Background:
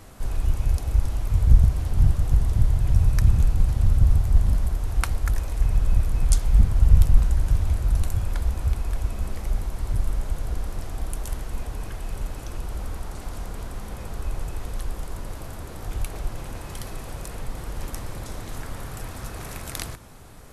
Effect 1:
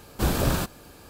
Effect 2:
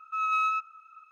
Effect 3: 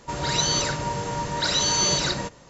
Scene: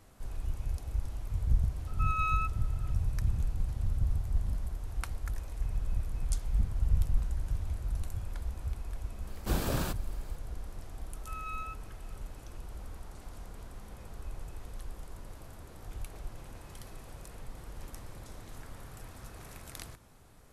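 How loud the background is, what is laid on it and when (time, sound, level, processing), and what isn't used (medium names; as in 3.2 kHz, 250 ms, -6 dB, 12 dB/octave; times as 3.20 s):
background -12.5 dB
1.87 s: add 2 -5.5 dB
9.27 s: add 1 -8 dB
11.14 s: add 2 -14.5 dB
not used: 3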